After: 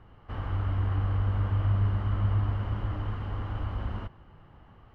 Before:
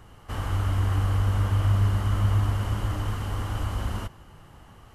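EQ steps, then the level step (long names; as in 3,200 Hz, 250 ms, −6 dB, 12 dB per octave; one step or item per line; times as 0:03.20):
high-frequency loss of the air 350 metres
−3.5 dB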